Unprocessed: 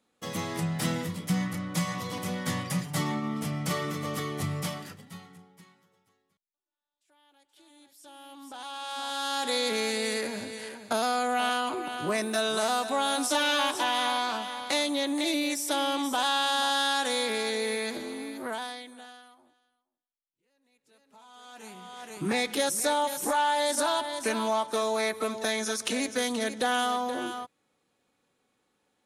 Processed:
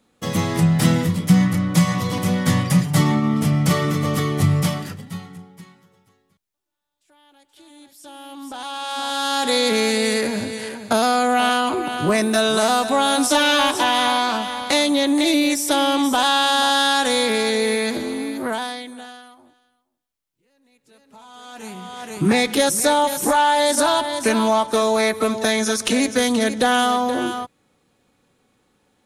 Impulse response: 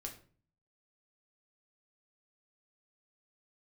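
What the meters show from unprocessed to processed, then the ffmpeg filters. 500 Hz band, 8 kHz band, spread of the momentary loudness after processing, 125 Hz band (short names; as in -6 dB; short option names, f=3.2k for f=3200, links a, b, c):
+10.0 dB, +8.5 dB, 13 LU, +15.0 dB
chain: -af "lowshelf=f=190:g=10.5,volume=8.5dB"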